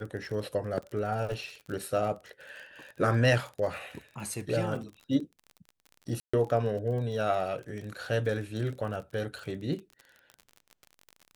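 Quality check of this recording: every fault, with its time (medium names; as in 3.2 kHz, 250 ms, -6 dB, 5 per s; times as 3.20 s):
crackle 36 per s -37 dBFS
6.20–6.33 s: dropout 135 ms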